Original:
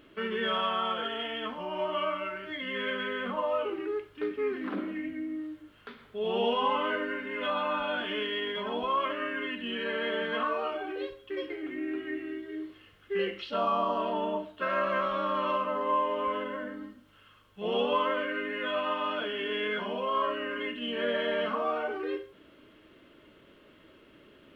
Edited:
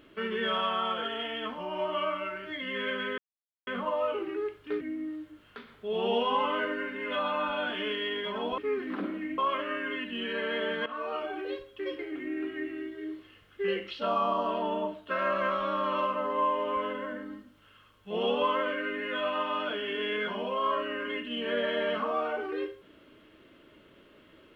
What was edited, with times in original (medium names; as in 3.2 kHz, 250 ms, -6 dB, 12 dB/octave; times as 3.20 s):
3.18 s: insert silence 0.49 s
4.32–5.12 s: move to 8.89 s
10.37–10.84 s: fade in equal-power, from -15 dB